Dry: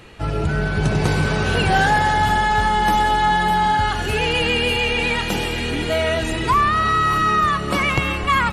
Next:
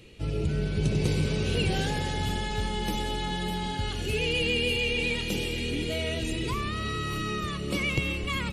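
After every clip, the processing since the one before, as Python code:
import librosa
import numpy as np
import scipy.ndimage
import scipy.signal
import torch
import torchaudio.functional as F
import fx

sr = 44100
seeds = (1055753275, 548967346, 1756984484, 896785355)

y = fx.band_shelf(x, sr, hz=1100.0, db=-13.0, octaves=1.7)
y = y * librosa.db_to_amplitude(-6.5)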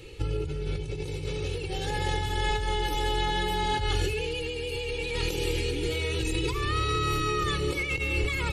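y = fx.over_compress(x, sr, threshold_db=-32.0, ratio=-1.0)
y = y + 0.93 * np.pad(y, (int(2.3 * sr / 1000.0), 0))[:len(y)]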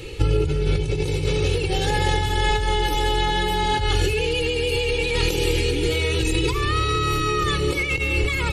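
y = fx.rider(x, sr, range_db=3, speed_s=0.5)
y = y * librosa.db_to_amplitude(7.5)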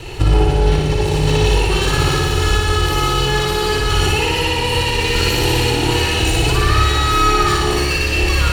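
y = fx.lower_of_two(x, sr, delay_ms=0.71)
y = fx.room_flutter(y, sr, wall_m=10.1, rt60_s=1.3)
y = y * librosa.db_to_amplitude(4.5)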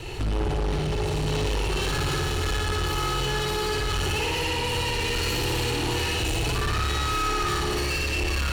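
y = 10.0 ** (-18.0 / 20.0) * np.tanh(x / 10.0 ** (-18.0 / 20.0))
y = y * librosa.db_to_amplitude(-4.5)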